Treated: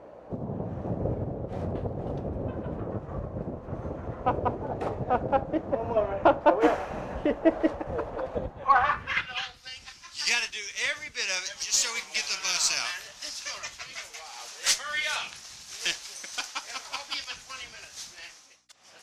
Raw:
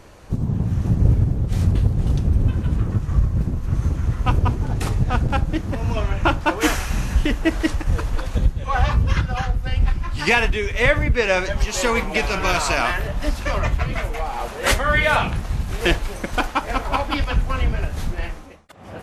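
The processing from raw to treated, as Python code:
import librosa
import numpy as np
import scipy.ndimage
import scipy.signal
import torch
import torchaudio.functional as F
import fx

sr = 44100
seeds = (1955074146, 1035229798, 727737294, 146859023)

y = fx.add_hum(x, sr, base_hz=60, snr_db=26)
y = fx.filter_sweep_bandpass(y, sr, from_hz=590.0, to_hz=5700.0, start_s=8.41, end_s=9.72, q=2.4)
y = fx.cheby_harmonics(y, sr, harmonics=(6,), levels_db=(-31,), full_scale_db=-13.0)
y = y * 10.0 ** (6.0 / 20.0)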